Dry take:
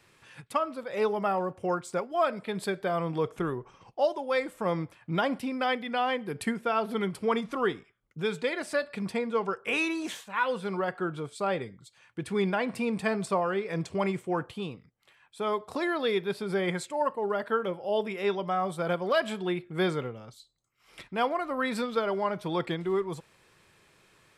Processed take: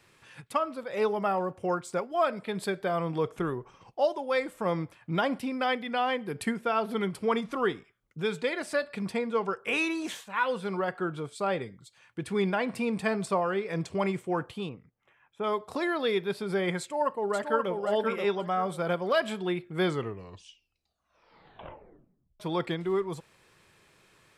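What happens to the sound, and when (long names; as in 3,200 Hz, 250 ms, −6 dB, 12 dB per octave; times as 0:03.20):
0:14.69–0:15.44: moving average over 10 samples
0:16.80–0:17.71: delay throw 530 ms, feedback 25%, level −4.5 dB
0:19.81: tape stop 2.59 s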